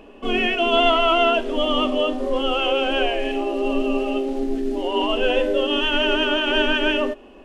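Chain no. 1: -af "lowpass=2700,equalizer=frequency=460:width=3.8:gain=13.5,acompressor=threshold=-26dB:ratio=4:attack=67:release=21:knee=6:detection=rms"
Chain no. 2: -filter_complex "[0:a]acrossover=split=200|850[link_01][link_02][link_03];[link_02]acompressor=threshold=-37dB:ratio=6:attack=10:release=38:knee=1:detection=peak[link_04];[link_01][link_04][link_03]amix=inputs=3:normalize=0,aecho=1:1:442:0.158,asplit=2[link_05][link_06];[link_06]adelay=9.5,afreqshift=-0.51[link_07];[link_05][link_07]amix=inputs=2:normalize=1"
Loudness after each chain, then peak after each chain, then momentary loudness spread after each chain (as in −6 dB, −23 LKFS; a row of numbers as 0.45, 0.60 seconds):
−23.0, −26.0 LKFS; −11.0, −10.5 dBFS; 2, 10 LU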